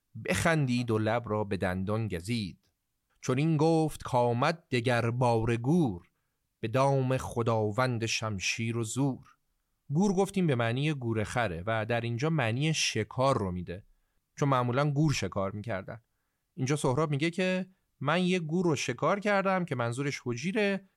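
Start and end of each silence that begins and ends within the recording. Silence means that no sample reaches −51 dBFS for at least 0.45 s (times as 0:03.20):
0:02.54–0:03.23
0:06.02–0:06.63
0:09.32–0:09.90
0:13.81–0:14.37
0:15.99–0:16.57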